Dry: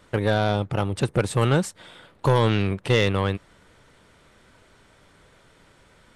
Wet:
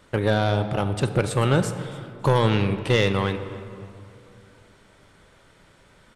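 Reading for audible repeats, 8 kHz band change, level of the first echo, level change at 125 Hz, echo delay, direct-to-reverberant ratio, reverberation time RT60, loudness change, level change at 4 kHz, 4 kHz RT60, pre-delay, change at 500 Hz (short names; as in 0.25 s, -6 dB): 2, 0.0 dB, -22.0 dB, +0.5 dB, 0.28 s, 9.0 dB, 2.6 s, +0.5 dB, +0.5 dB, 1.3 s, 3 ms, +0.5 dB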